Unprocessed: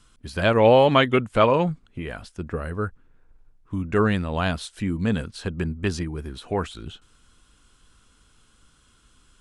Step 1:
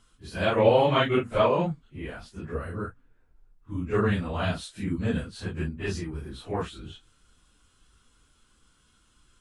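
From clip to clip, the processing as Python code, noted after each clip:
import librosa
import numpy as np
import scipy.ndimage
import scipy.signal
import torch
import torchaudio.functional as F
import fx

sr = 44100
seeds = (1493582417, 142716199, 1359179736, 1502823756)

y = fx.phase_scramble(x, sr, seeds[0], window_ms=100)
y = y * librosa.db_to_amplitude(-4.5)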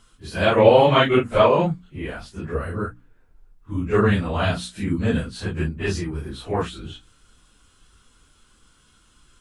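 y = fx.hum_notches(x, sr, base_hz=60, count=5)
y = y * librosa.db_to_amplitude(6.5)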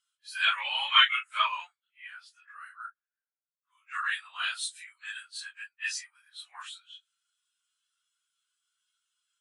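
y = fx.dynamic_eq(x, sr, hz=8700.0, q=0.95, threshold_db=-49.0, ratio=4.0, max_db=7)
y = scipy.signal.sosfilt(scipy.signal.bessel(6, 1900.0, 'highpass', norm='mag', fs=sr, output='sos'), y)
y = fx.spectral_expand(y, sr, expansion=1.5)
y = y * librosa.db_to_amplitude(4.0)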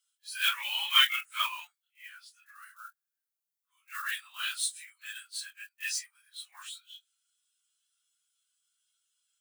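y = fx.block_float(x, sr, bits=5)
y = fx.tilt_eq(y, sr, slope=4.0)
y = y * librosa.db_to_amplitude(-7.5)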